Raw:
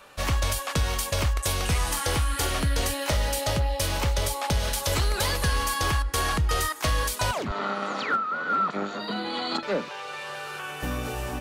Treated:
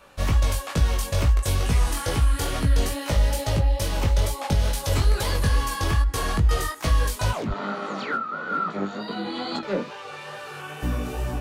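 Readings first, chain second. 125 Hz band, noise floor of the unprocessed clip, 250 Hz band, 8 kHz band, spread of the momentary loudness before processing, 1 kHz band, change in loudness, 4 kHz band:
+5.0 dB, -37 dBFS, +3.0 dB, -3.0 dB, 6 LU, -1.5 dB, +2.0 dB, -3.0 dB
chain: chorus 2.3 Hz, delay 17 ms, depth 4.3 ms; low shelf 490 Hz +7.5 dB

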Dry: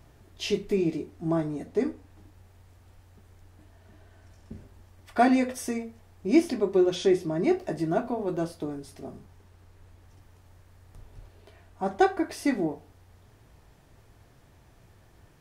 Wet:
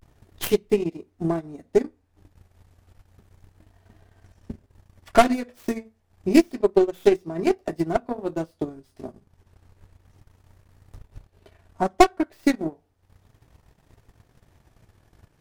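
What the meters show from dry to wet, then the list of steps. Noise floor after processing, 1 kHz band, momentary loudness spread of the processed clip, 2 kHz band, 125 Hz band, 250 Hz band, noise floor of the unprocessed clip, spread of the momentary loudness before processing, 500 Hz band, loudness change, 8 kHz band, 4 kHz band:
-66 dBFS, +5.0 dB, 20 LU, +3.0 dB, +1.0 dB, +2.0 dB, -58 dBFS, 13 LU, +4.5 dB, +3.5 dB, +3.5 dB, +3.0 dB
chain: tracing distortion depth 0.34 ms; vibrato 0.31 Hz 51 cents; transient shaper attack +11 dB, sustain -12 dB; gain -2.5 dB

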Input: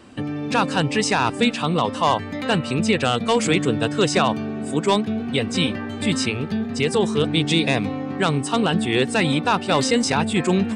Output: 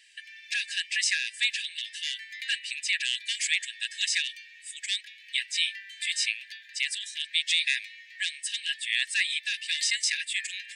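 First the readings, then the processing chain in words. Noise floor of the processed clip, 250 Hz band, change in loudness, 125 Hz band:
-52 dBFS, under -40 dB, -7.5 dB, under -40 dB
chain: brick-wall FIR high-pass 1600 Hz; gain -1.5 dB

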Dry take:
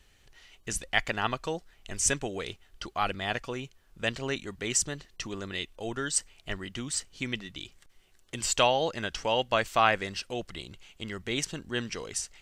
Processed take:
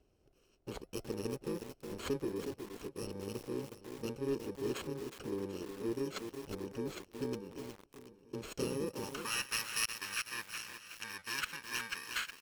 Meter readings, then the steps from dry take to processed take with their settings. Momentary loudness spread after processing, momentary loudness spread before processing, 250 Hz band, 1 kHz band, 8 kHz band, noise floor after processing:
11 LU, 16 LU, -3.0 dB, -16.5 dB, -12.5 dB, -70 dBFS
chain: FFT order left unsorted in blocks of 64 samples; on a send: feedback echo 0.74 s, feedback 43%, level -17 dB; on the sum: flipped gate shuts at -8 dBFS, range -36 dB; band-pass sweep 410 Hz -> 1700 Hz, 8.83–9.38; high shelf 2600 Hz +8 dB; in parallel at -8 dB: wavefolder -37 dBFS; on the sum: low shelf 130 Hz +11.5 dB; lo-fi delay 0.365 s, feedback 35%, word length 8-bit, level -6 dB; gain +2.5 dB

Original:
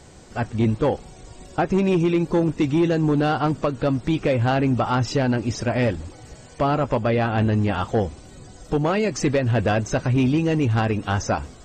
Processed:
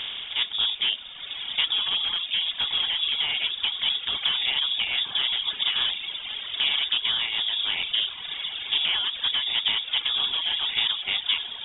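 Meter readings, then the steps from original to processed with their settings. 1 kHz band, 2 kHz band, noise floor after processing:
-14.0 dB, +0.5 dB, -38 dBFS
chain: per-bin compression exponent 0.4; diffused feedback echo 1.079 s, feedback 43%, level -7 dB; inverted band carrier 3600 Hz; reverb removal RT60 2 s; gain -8.5 dB

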